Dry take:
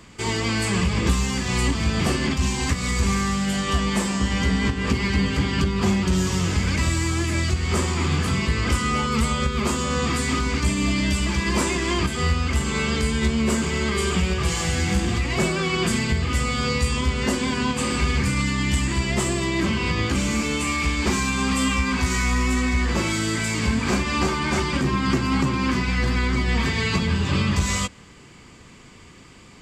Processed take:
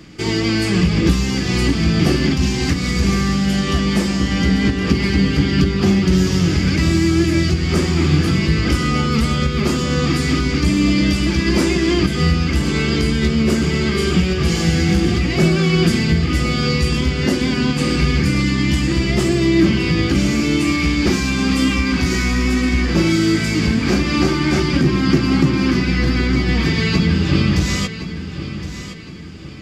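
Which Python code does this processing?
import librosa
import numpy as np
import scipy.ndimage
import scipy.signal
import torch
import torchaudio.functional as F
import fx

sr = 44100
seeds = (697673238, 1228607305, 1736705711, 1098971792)

y = fx.graphic_eq_31(x, sr, hz=(160, 315, 1000, 5000, 8000), db=(10, 11, -9, 5, -10))
y = fx.echo_feedback(y, sr, ms=1066, feedback_pct=39, wet_db=-12)
y = y * librosa.db_to_amplitude(3.0)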